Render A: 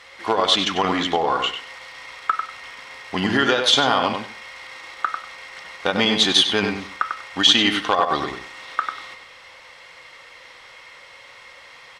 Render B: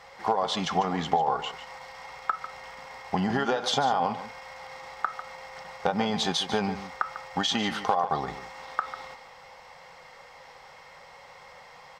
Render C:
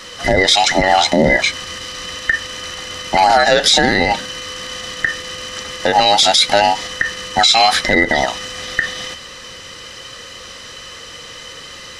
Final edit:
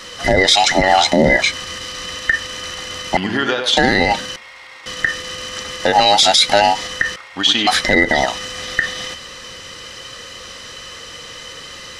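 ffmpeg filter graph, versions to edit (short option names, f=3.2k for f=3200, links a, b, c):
-filter_complex "[0:a]asplit=3[a][b][c];[2:a]asplit=4[d][e][f][g];[d]atrim=end=3.172[h];[a]atrim=start=3.168:end=3.772[i];[e]atrim=start=3.768:end=4.362[j];[b]atrim=start=4.358:end=4.862[k];[f]atrim=start=4.858:end=7.162[l];[c]atrim=start=7.158:end=7.672[m];[g]atrim=start=7.668[n];[h][i]acrossfade=d=0.004:c1=hsin:c2=hsin[o];[o][j]acrossfade=d=0.004:c1=hsin:c2=hsin[p];[p][k]acrossfade=d=0.004:c1=hsin:c2=hsin[q];[q][l]acrossfade=d=0.004:c1=hsin:c2=hsin[r];[r][m]acrossfade=d=0.004:c1=hsin:c2=hsin[s];[s][n]acrossfade=d=0.004:c1=hsin:c2=hsin"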